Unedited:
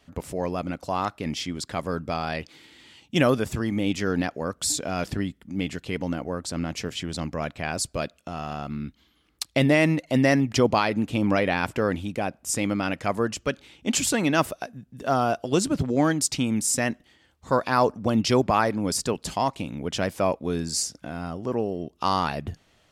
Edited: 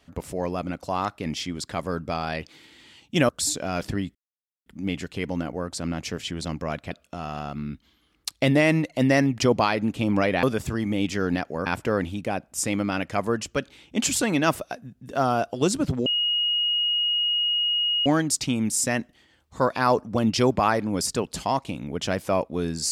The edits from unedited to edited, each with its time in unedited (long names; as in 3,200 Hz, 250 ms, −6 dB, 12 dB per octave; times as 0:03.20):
0:03.29–0:04.52: move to 0:11.57
0:05.38: splice in silence 0.51 s
0:07.63–0:08.05: remove
0:15.97: insert tone 2,880 Hz −20.5 dBFS 2.00 s